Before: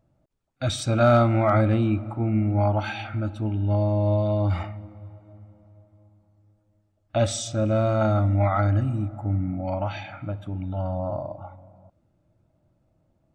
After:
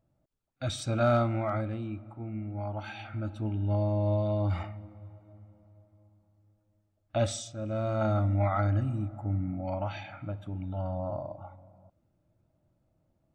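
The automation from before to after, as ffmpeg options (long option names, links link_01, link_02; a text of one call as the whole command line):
ffmpeg -i in.wav -af "volume=10.5dB,afade=type=out:start_time=1.11:duration=0.62:silence=0.446684,afade=type=in:start_time=2.66:duration=0.75:silence=0.375837,afade=type=out:start_time=7.29:duration=0.25:silence=0.354813,afade=type=in:start_time=7.54:duration=0.57:silence=0.354813" out.wav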